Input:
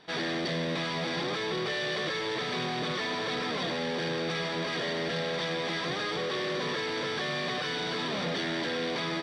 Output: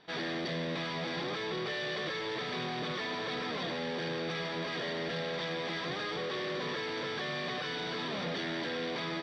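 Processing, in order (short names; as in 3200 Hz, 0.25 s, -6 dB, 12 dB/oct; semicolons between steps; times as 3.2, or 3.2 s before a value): LPF 5600 Hz 12 dB/oct; gain -4 dB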